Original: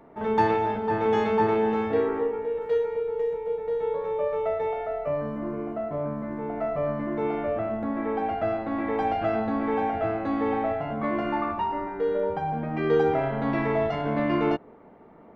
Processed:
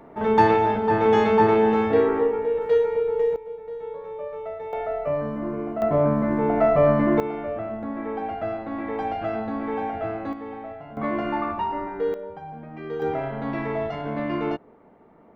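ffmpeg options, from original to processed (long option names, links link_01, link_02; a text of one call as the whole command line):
ffmpeg -i in.wav -af "asetnsamples=nb_out_samples=441:pad=0,asendcmd='3.36 volume volume -6.5dB;4.73 volume volume 2.5dB;5.82 volume volume 10dB;7.2 volume volume -2dB;10.33 volume volume -10dB;10.97 volume volume 1dB;12.14 volume volume -9.5dB;13.02 volume volume -2.5dB',volume=5dB" out.wav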